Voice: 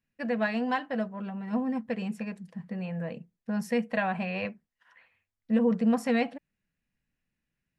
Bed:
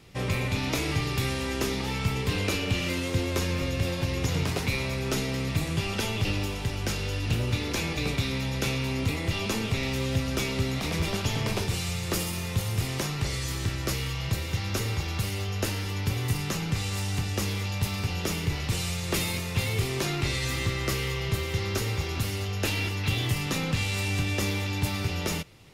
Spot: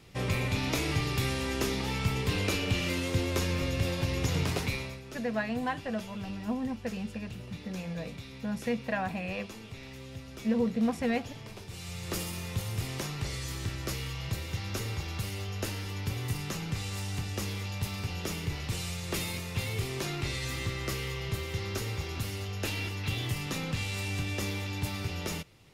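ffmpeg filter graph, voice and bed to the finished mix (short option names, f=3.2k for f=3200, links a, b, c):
-filter_complex "[0:a]adelay=4950,volume=-3.5dB[a];[1:a]volume=9dB,afade=t=out:st=4.57:d=0.45:silence=0.188365,afade=t=in:st=11.66:d=0.5:silence=0.281838[b];[a][b]amix=inputs=2:normalize=0"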